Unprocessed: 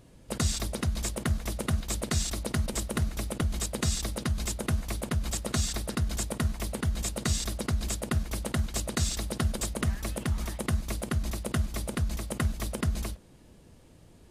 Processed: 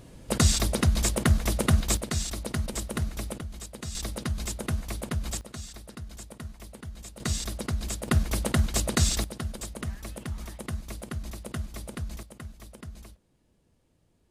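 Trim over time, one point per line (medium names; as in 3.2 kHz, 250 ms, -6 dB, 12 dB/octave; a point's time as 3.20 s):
+6.5 dB
from 1.97 s -1 dB
from 3.39 s -9 dB
from 3.95 s -1 dB
from 5.41 s -11.5 dB
from 7.20 s -1 dB
from 8.08 s +5 dB
from 9.24 s -5.5 dB
from 12.23 s -13.5 dB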